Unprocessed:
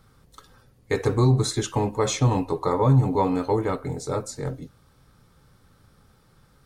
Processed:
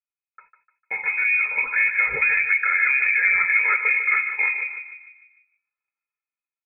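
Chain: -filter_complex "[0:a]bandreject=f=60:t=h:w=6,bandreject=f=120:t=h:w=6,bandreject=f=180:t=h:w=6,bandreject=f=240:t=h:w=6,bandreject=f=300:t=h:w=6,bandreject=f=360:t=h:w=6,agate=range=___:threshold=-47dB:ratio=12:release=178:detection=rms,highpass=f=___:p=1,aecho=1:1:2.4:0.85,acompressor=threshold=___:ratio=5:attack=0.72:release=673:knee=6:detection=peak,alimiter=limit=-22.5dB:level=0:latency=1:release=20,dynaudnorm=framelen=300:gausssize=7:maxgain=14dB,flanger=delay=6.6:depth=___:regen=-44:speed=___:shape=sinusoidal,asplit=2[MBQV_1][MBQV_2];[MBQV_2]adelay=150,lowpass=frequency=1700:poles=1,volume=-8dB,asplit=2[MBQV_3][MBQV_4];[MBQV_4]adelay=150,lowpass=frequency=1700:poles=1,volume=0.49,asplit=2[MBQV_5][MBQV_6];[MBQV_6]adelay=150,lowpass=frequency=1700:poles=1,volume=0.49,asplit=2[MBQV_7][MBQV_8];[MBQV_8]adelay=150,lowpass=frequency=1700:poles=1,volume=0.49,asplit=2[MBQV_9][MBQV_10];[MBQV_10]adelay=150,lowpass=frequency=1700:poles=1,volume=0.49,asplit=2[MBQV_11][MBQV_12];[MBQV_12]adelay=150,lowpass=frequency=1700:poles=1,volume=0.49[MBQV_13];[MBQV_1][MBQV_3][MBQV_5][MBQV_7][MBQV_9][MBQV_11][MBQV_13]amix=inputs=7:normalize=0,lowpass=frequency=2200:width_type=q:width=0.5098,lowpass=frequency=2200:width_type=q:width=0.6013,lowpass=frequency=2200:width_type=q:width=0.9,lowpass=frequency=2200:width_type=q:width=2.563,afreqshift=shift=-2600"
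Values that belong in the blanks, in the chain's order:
-43dB, 86, -20dB, 5, 0.5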